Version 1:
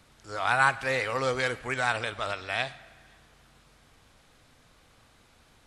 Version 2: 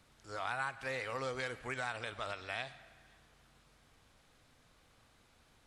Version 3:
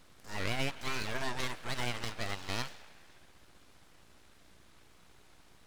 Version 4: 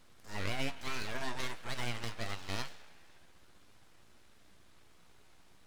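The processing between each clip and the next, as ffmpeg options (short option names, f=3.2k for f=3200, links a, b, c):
-af "acompressor=threshold=-29dB:ratio=3,volume=-7dB"
-af "aeval=exprs='val(0)+0.000501*(sin(2*PI*60*n/s)+sin(2*PI*2*60*n/s)/2+sin(2*PI*3*60*n/s)/3+sin(2*PI*4*60*n/s)/4+sin(2*PI*5*60*n/s)/5)':c=same,aeval=exprs='abs(val(0))':c=same,volume=6dB"
-af "flanger=delay=8.5:depth=3.6:regen=68:speed=0.49:shape=sinusoidal,volume=1.5dB"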